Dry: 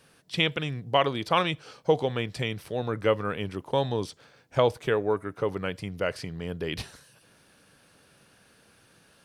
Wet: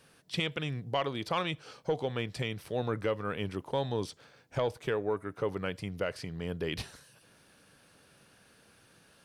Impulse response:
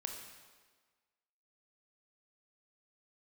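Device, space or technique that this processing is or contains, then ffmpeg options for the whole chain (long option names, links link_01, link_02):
soft clipper into limiter: -af "asoftclip=type=tanh:threshold=-11dB,alimiter=limit=-18.5dB:level=0:latency=1:release=355,volume=-2dB"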